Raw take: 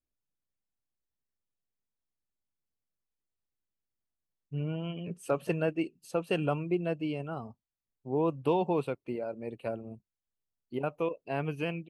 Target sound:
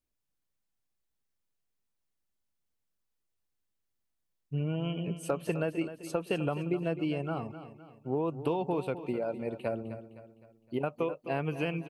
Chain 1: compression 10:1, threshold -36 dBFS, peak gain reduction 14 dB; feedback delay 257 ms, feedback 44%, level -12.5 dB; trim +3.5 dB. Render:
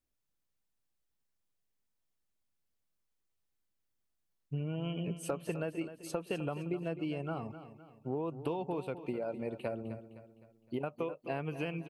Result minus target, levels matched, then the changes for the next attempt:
compression: peak gain reduction +5.5 dB
change: compression 10:1, threshold -30 dBFS, peak gain reduction 8.5 dB

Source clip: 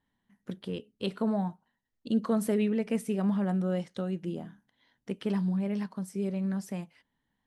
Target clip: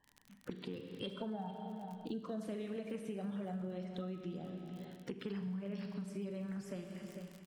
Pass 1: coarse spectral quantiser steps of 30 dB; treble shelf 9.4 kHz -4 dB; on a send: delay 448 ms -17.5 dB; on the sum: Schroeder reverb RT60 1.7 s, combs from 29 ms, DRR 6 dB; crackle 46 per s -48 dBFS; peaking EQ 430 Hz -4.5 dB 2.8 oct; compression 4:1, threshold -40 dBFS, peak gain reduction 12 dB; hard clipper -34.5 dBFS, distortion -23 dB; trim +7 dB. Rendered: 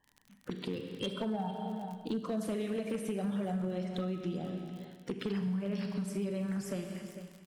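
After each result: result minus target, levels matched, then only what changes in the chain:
compression: peak gain reduction -7 dB; 8 kHz band +4.0 dB
change: compression 4:1, threshold -49.5 dBFS, peak gain reduction 19.5 dB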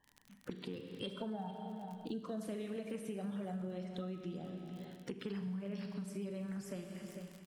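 8 kHz band +4.0 dB
change: treble shelf 9.4 kHz -15.5 dB

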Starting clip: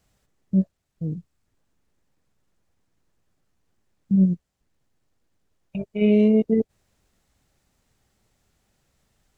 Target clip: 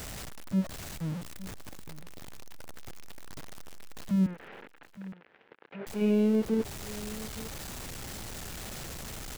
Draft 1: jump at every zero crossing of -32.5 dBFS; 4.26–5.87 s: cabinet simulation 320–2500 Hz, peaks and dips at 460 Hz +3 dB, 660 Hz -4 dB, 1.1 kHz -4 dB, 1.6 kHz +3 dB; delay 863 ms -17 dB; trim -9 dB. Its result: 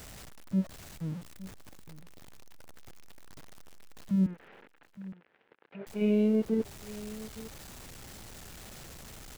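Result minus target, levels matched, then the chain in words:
jump at every zero crossing: distortion -6 dB
jump at every zero crossing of -25.5 dBFS; 4.26–5.87 s: cabinet simulation 320–2500 Hz, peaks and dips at 460 Hz +3 dB, 660 Hz -4 dB, 1.1 kHz -4 dB, 1.6 kHz +3 dB; delay 863 ms -17 dB; trim -9 dB

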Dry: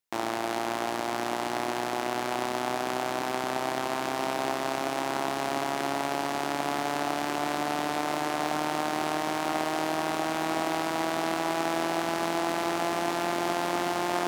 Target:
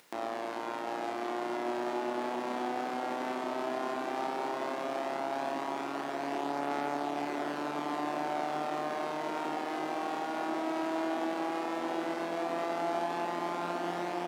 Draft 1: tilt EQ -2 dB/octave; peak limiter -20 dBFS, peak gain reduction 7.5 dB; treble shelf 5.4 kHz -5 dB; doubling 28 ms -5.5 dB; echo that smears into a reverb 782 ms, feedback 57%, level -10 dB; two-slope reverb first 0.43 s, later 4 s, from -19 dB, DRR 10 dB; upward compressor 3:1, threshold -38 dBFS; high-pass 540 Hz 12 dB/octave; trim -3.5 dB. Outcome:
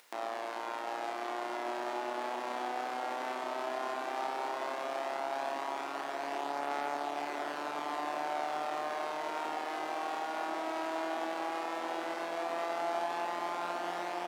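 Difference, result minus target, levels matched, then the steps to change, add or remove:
250 Hz band -6.5 dB
change: high-pass 260 Hz 12 dB/octave

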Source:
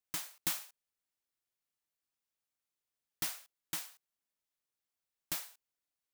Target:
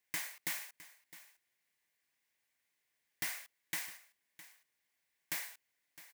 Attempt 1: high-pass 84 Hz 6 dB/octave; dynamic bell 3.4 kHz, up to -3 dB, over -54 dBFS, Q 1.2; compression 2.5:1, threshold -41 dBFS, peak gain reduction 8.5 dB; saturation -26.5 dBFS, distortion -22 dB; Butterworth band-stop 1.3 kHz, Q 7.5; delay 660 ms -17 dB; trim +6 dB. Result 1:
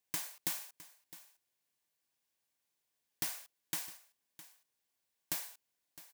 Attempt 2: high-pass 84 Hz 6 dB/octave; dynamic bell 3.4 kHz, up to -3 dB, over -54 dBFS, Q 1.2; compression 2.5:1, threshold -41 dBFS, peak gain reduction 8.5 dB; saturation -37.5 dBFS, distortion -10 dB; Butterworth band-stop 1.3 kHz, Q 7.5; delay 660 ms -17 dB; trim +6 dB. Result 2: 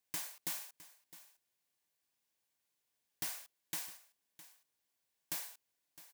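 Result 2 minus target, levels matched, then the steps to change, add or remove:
2 kHz band -7.5 dB
add after Butterworth band-stop: peaking EQ 2 kHz +12 dB 0.64 oct

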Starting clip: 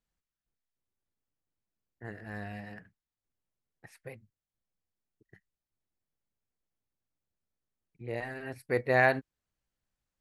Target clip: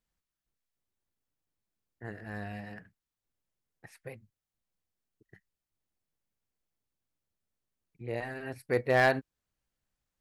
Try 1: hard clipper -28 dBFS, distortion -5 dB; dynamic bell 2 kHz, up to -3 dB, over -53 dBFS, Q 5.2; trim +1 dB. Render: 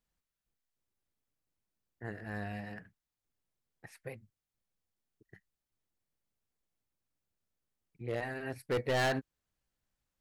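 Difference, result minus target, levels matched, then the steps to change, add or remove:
hard clipper: distortion +12 dB
change: hard clipper -17.5 dBFS, distortion -17 dB

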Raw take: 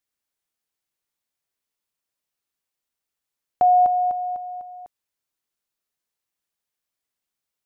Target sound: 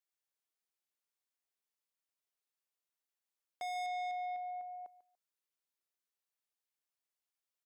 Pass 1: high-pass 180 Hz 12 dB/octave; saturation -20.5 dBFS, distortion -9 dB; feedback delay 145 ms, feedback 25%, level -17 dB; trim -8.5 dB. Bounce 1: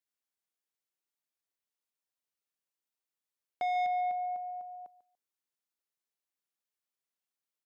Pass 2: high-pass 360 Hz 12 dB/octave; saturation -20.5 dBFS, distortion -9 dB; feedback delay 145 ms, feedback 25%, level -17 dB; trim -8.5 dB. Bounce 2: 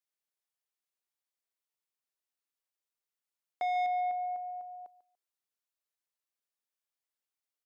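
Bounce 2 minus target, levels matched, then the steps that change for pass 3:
saturation: distortion -6 dB
change: saturation -30 dBFS, distortion -4 dB

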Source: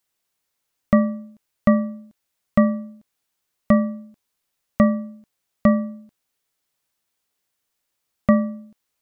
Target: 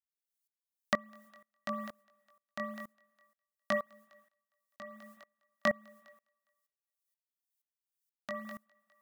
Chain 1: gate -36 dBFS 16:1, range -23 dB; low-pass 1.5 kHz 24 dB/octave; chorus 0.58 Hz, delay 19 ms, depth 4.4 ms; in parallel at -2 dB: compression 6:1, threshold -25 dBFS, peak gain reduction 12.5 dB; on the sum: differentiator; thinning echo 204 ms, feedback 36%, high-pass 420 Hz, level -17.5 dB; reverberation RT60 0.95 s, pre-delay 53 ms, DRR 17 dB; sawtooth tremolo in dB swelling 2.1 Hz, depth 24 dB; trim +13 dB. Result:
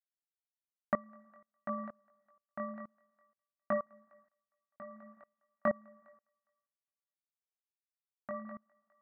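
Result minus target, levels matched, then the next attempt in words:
2 kHz band -6.5 dB
gate -36 dBFS 16:1, range -23 dB; chorus 0.58 Hz, delay 19 ms, depth 4.4 ms; in parallel at -2 dB: compression 6:1, threshold -25 dBFS, peak gain reduction 12.5 dB; on the sum: differentiator; thinning echo 204 ms, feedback 36%, high-pass 420 Hz, level -17.5 dB; reverberation RT60 0.95 s, pre-delay 53 ms, DRR 17 dB; sawtooth tremolo in dB swelling 2.1 Hz, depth 24 dB; trim +13 dB

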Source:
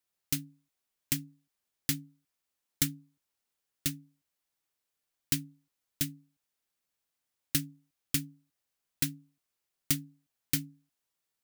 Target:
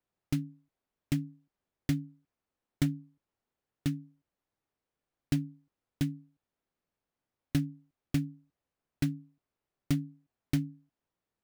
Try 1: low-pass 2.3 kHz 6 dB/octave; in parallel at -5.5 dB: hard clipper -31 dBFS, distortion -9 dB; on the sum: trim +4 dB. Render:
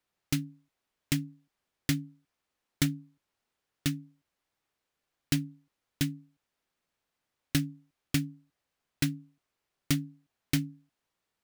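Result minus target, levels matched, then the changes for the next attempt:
2 kHz band +6.0 dB
change: low-pass 620 Hz 6 dB/octave

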